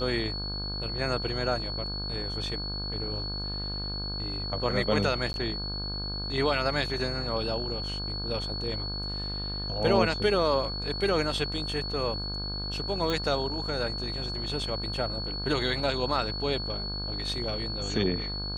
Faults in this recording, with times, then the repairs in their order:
mains buzz 50 Hz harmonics 33 −36 dBFS
whistle 4,400 Hz −34 dBFS
0:05.33–0:05.34: drop-out 11 ms
0:13.10: click −16 dBFS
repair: click removal
hum removal 50 Hz, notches 33
notch filter 4,400 Hz, Q 30
repair the gap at 0:05.33, 11 ms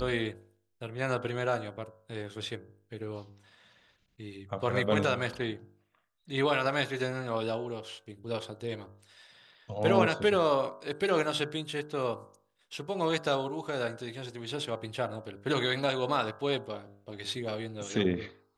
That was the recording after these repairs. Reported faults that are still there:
none of them is left

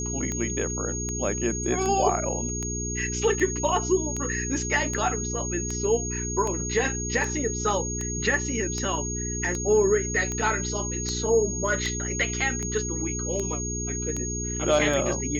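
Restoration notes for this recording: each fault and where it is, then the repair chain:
mains hum 60 Hz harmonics 7 −32 dBFS
scratch tick 78 rpm −17 dBFS
whistle 6,600 Hz −31 dBFS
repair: click removal
hum removal 60 Hz, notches 7
notch filter 6,600 Hz, Q 30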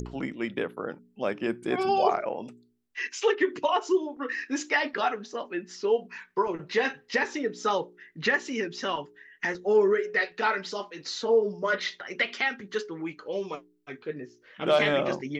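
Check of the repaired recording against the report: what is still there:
none of them is left

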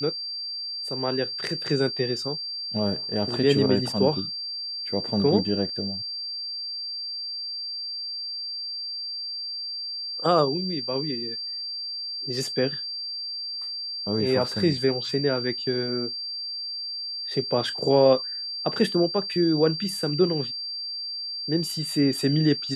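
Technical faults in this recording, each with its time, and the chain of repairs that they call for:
whistle 4,700 Hz −30 dBFS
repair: notch filter 4,700 Hz, Q 30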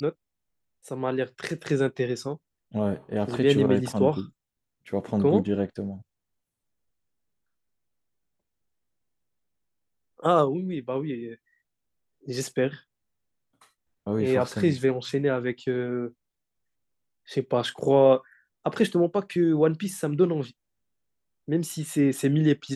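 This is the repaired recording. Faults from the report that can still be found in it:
none of them is left

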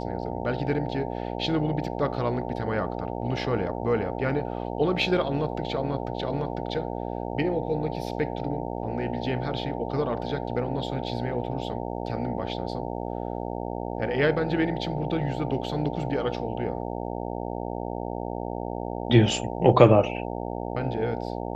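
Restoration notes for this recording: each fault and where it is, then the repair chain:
mains buzz 60 Hz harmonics 15 −32 dBFS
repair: hum removal 60 Hz, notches 15

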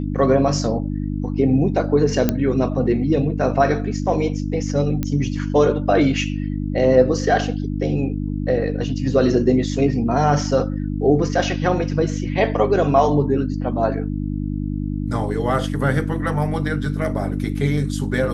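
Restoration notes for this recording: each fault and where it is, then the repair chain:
mains hum 50 Hz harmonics 6 −24 dBFS
0:02.29: click −4 dBFS
0:05.03: click −10 dBFS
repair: click removal
hum removal 50 Hz, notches 6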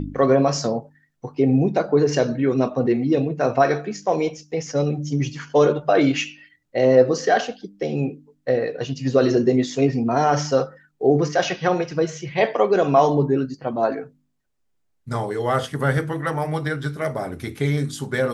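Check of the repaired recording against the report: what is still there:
none of them is left

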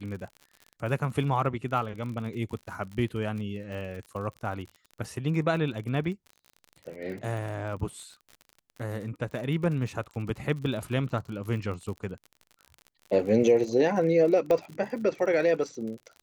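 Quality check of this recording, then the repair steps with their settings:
surface crackle 48 per second −37 dBFS
0:14.51: click −15 dBFS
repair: click removal

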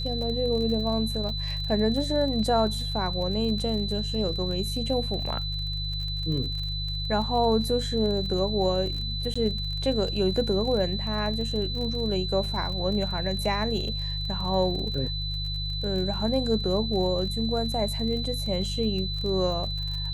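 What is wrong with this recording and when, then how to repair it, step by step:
surface crackle 34 per second −33 dBFS
mains hum 50 Hz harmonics 3 −32 dBFS
whistle 4,000 Hz −32 dBFS
0:01.29: drop-out 2.2 ms
0:09.34–0:09.36: drop-out 15 ms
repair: click removal
hum removal 50 Hz, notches 3
notch filter 4,000 Hz, Q 30
repair the gap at 0:01.29, 2.2 ms
repair the gap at 0:09.34, 15 ms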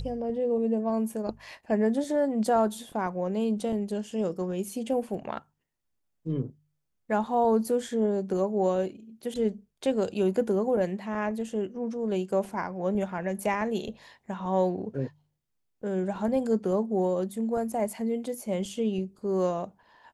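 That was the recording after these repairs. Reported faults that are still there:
none of them is left

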